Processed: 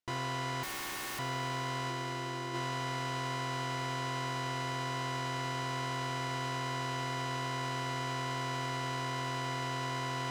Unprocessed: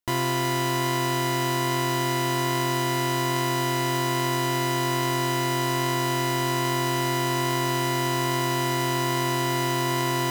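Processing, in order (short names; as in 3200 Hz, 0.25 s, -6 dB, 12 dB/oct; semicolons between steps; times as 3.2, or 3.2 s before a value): soft clip -24.5 dBFS, distortion -12 dB; careless resampling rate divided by 2×, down filtered, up zero stuff; 1.89–2.53 bell 350 Hz +6 dB -> +12.5 dB 0.24 oct; limiter -22.5 dBFS, peak gain reduction 8.5 dB; LPF 6600 Hz 12 dB/oct; notches 50/100/150/200/250/300/350 Hz; 0.63–1.19 wrapped overs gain 33.5 dB; thinning echo 84 ms, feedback 79%, level -21 dB; gain -2 dB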